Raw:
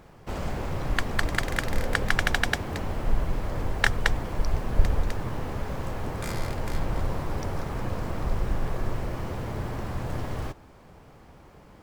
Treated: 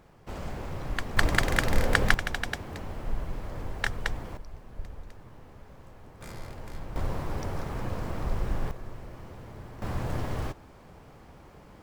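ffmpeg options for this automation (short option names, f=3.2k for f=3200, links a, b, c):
-af "asetnsamples=n=441:p=0,asendcmd='1.17 volume volume 2.5dB;2.14 volume volume -7dB;4.37 volume volume -18dB;6.21 volume volume -11dB;6.96 volume volume -2.5dB;8.71 volume volume -12dB;9.82 volume volume 0dB',volume=-5.5dB"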